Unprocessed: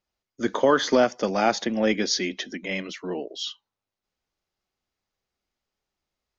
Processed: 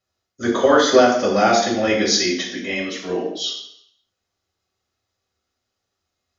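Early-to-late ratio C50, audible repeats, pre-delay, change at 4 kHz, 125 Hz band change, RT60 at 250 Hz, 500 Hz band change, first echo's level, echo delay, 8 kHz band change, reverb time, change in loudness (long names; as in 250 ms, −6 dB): 4.5 dB, no echo audible, 3 ms, +7.5 dB, +5.0 dB, 0.70 s, +6.5 dB, no echo audible, no echo audible, can't be measured, 0.70 s, +6.5 dB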